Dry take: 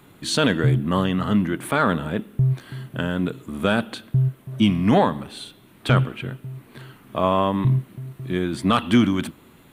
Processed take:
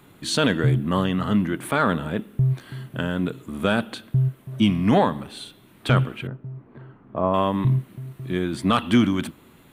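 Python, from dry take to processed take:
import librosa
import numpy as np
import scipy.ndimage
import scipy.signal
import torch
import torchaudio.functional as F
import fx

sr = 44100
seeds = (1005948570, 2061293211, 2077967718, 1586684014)

y = fx.lowpass(x, sr, hz=1100.0, slope=12, at=(6.27, 7.34))
y = y * librosa.db_to_amplitude(-1.0)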